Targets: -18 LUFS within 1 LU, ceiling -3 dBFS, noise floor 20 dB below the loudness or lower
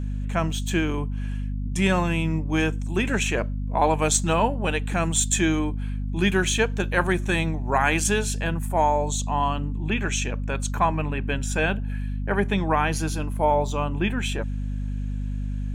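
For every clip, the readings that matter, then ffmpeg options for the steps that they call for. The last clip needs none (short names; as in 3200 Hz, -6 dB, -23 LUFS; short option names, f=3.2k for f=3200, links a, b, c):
hum 50 Hz; harmonics up to 250 Hz; hum level -25 dBFS; loudness -24.5 LUFS; peak -5.5 dBFS; loudness target -18.0 LUFS
-> -af "bandreject=f=50:t=h:w=4,bandreject=f=100:t=h:w=4,bandreject=f=150:t=h:w=4,bandreject=f=200:t=h:w=4,bandreject=f=250:t=h:w=4"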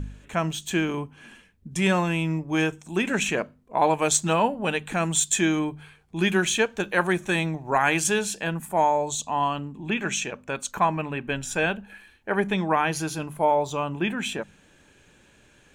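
hum none; loudness -25.0 LUFS; peak -7.0 dBFS; loudness target -18.0 LUFS
-> -af "volume=7dB,alimiter=limit=-3dB:level=0:latency=1"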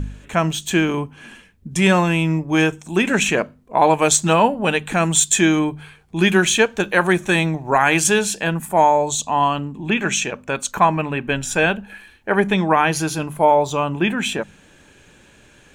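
loudness -18.0 LUFS; peak -3.0 dBFS; noise floor -51 dBFS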